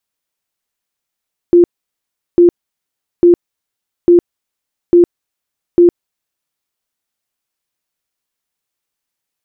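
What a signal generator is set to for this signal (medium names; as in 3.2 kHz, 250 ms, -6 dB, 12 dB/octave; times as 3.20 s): tone bursts 348 Hz, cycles 38, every 0.85 s, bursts 6, -3 dBFS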